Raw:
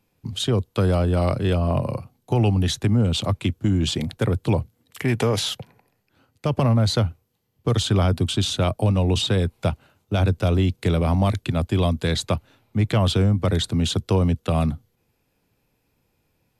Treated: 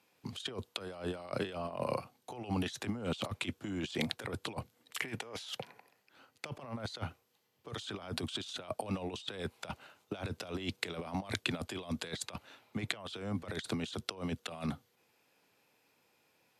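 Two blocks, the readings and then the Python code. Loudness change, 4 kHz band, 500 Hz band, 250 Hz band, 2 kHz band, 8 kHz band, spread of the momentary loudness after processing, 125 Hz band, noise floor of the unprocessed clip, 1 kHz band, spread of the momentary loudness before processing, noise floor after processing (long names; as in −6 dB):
−17.5 dB, −13.5 dB, −16.5 dB, −16.5 dB, −8.0 dB, −14.0 dB, 10 LU, −23.5 dB, −71 dBFS, −14.0 dB, 8 LU, −74 dBFS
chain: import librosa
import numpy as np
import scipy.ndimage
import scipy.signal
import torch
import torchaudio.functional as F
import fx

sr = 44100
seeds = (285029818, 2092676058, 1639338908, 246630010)

y = fx.weighting(x, sr, curve='A')
y = fx.over_compress(y, sr, threshold_db=-33.0, ratio=-0.5)
y = y * 10.0 ** (-4.5 / 20.0)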